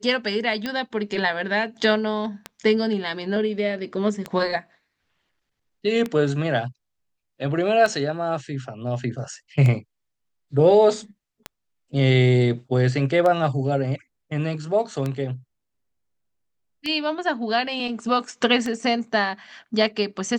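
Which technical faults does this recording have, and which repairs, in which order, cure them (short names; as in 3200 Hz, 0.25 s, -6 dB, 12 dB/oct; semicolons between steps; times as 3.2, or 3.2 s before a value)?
tick 33 1/3 rpm -13 dBFS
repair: de-click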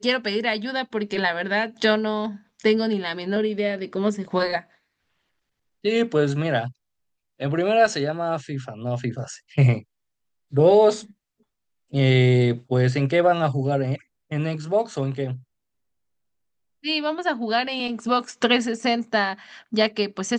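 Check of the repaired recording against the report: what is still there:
none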